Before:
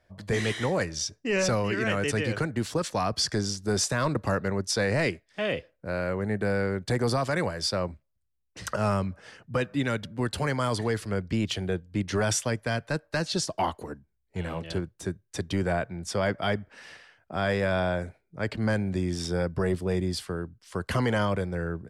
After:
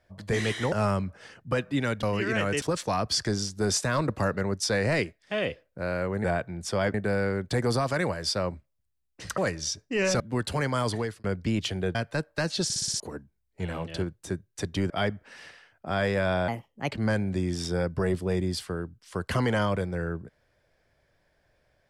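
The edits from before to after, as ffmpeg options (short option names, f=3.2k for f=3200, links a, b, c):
-filter_complex "[0:a]asplit=19[a][b][c][d][e][f][g][h][i][j][k][l][m][n][o][p][q][r][s];[a]atrim=end=0.722[t];[b]atrim=start=8.748:end=10.062[u];[c]atrim=start=1.538:end=2.132[v];[d]atrim=start=2.688:end=6.312[w];[e]atrim=start=15.658:end=16.362[x];[f]atrim=start=6.308:end=8.752[y];[g]atrim=start=0.718:end=1.542[z];[h]atrim=start=10.058:end=11.1,asetpts=PTS-STARTPTS,afade=t=out:st=0.752:d=0.29[aa];[i]atrim=start=11.1:end=11.812,asetpts=PTS-STARTPTS,afade=t=in:d=0.004:c=hsin[ab];[j]atrim=start=12.708:end=13.462[ac];[k]atrim=start=13.398:end=13.462[ad];[l]atrim=start=13.398:end=13.462[ae];[m]atrim=start=13.398:end=13.462[af];[n]atrim=start=13.398:end=13.462[ag];[o]atrim=start=13.398:end=13.462[ah];[p]atrim=start=13.758:end=15.662[ai];[q]atrim=start=16.358:end=17.944[aj];[r]atrim=start=17.94:end=18.51,asetpts=PTS-STARTPTS,asetrate=58212,aresample=44100,atrim=end_sample=19043,asetpts=PTS-STARTPTS[ak];[s]atrim=start=18.506[al];[t][u]acrossfade=d=0.004:c1=hsin:c2=hsin[am];[am][v]acrossfade=d=0.004:c1=hsin:c2=hsin[an];[an][w]acrossfade=d=0.004:c1=hsin:c2=hsin[ao];[ao][x]acrossfade=d=0.004:c1=hsin:c2=hsin[ap];[ap][y]acrossfade=d=0.004:c1=hsin:c2=hsin[aq];[aq][z]acrossfade=d=0.004:c1=hsin:c2=hsin[ar];[aa][ab]concat=n=2:v=0:a=1[as];[ar][as]acrossfade=d=0.004:c1=hsin:c2=hsin[at];[at][ac]acrossfade=d=0.004:c1=hsin:c2=hsin[au];[au][ad]acrossfade=d=0.004:c1=hsin:c2=hsin[av];[av][ae]acrossfade=d=0.004:c1=hsin:c2=hsin[aw];[aw][af]acrossfade=d=0.004:c1=hsin:c2=hsin[ax];[ax][ag]acrossfade=d=0.004:c1=hsin:c2=hsin[ay];[ay][ah]acrossfade=d=0.004:c1=hsin:c2=hsin[az];[az][ai]acrossfade=d=0.004:c1=hsin:c2=hsin[ba];[ba][aj]acrossfade=d=0.004:c1=hsin:c2=hsin[bb];[bb][ak]acrossfade=d=0.004:c1=hsin:c2=hsin[bc];[bc][al]acrossfade=d=0.004:c1=hsin:c2=hsin"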